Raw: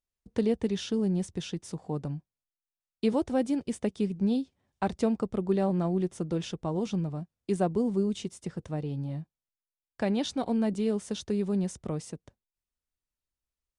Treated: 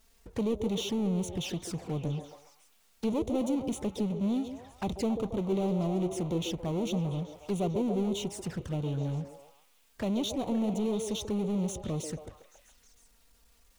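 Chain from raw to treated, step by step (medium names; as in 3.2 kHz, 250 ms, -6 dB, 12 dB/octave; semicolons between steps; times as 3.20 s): power-law waveshaper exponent 0.5; touch-sensitive flanger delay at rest 4.8 ms, full sweep at -23.5 dBFS; repeats whose band climbs or falls 138 ms, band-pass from 430 Hz, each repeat 0.7 oct, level -3.5 dB; trim -7 dB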